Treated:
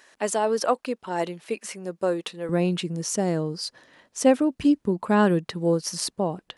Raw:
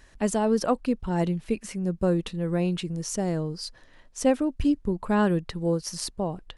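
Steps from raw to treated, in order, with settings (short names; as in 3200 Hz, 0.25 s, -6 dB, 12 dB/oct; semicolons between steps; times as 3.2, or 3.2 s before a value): HPF 450 Hz 12 dB/oct, from 2.49 s 170 Hz; gain +4 dB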